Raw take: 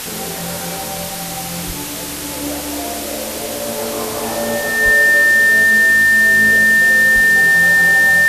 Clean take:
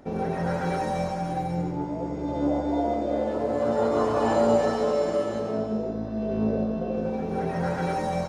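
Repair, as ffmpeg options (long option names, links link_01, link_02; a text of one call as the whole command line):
ffmpeg -i in.wav -filter_complex "[0:a]bandreject=frequency=1800:width=30,asplit=3[link_01][link_02][link_03];[link_01]afade=type=out:start_time=1.66:duration=0.02[link_04];[link_02]highpass=frequency=140:width=0.5412,highpass=frequency=140:width=1.3066,afade=type=in:start_time=1.66:duration=0.02,afade=type=out:start_time=1.78:duration=0.02[link_05];[link_03]afade=type=in:start_time=1.78:duration=0.02[link_06];[link_04][link_05][link_06]amix=inputs=3:normalize=0,asplit=3[link_07][link_08][link_09];[link_07]afade=type=out:start_time=4.84:duration=0.02[link_10];[link_08]highpass=frequency=140:width=0.5412,highpass=frequency=140:width=1.3066,afade=type=in:start_time=4.84:duration=0.02,afade=type=out:start_time=4.96:duration=0.02[link_11];[link_09]afade=type=in:start_time=4.96:duration=0.02[link_12];[link_10][link_11][link_12]amix=inputs=3:normalize=0,asplit=3[link_13][link_14][link_15];[link_13]afade=type=out:start_time=7.14:duration=0.02[link_16];[link_14]highpass=frequency=140:width=0.5412,highpass=frequency=140:width=1.3066,afade=type=in:start_time=7.14:duration=0.02,afade=type=out:start_time=7.26:duration=0.02[link_17];[link_15]afade=type=in:start_time=7.26:duration=0.02[link_18];[link_16][link_17][link_18]amix=inputs=3:normalize=0,afwtdn=0.056" out.wav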